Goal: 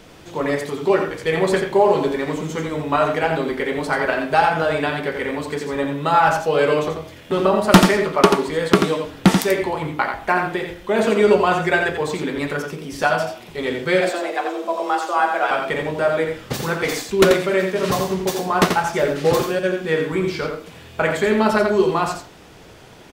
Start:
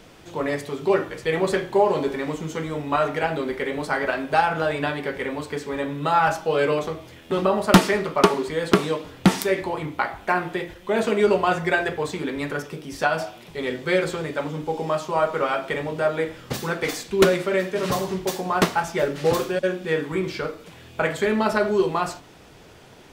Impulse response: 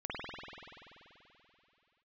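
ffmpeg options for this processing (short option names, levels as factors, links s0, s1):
-filter_complex "[0:a]asettb=1/sr,asplit=3[s0][s1][s2];[s0]atrim=end=14.014[s3];[s1]atrim=start=14.01:end=15.51,asetpts=PTS-STARTPTS,afade=t=in:d=0.004:c=qsin,afade=t=out:st=1.496:d=0.004:c=qsin,afreqshift=180[s4];[s2]atrim=start=15.506[s5];[s3][s4]acrossfade=d=0.004:c1=hsin:c2=qsin[s6];[s6][s5]acrossfade=d=0.004:c1=qsin:c2=hsin,aecho=1:1:86:0.501,volume=1.41"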